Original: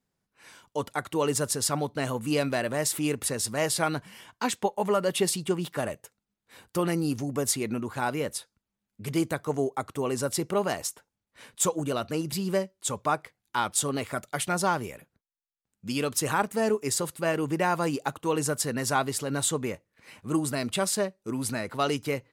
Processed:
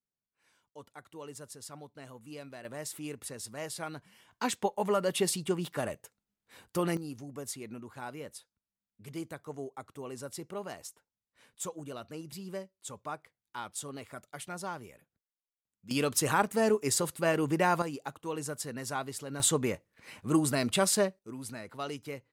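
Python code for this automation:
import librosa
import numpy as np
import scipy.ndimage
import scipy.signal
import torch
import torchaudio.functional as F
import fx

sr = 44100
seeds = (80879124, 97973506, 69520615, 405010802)

y = fx.gain(x, sr, db=fx.steps((0.0, -19.0), (2.65, -12.5), (4.31, -3.5), (6.97, -13.0), (15.91, -1.0), (17.82, -9.5), (19.4, 0.5), (21.19, -11.0)))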